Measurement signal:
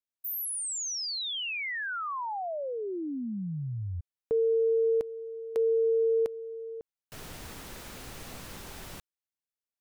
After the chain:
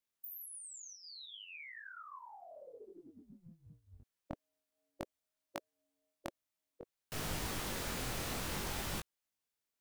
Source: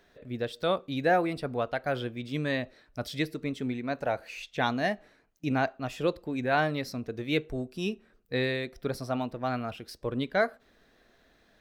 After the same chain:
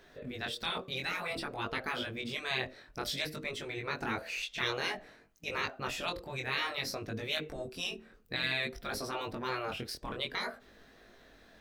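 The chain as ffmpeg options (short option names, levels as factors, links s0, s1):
-af "afftfilt=real='re*lt(hypot(re,im),0.0794)':imag='im*lt(hypot(re,im),0.0794)':win_size=1024:overlap=0.75,flanger=delay=19:depth=4.5:speed=0.55,volume=2.37"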